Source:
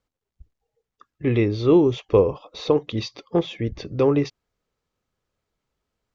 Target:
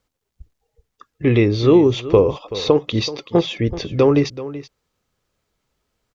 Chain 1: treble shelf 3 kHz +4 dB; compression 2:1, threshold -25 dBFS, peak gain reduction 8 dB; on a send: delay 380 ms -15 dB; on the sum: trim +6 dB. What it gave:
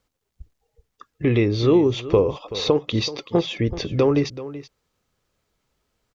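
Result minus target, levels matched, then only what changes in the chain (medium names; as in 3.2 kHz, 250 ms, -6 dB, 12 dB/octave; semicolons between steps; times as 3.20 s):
compression: peak gain reduction +4.5 dB
change: compression 2:1, threshold -16.5 dBFS, peak gain reduction 3.5 dB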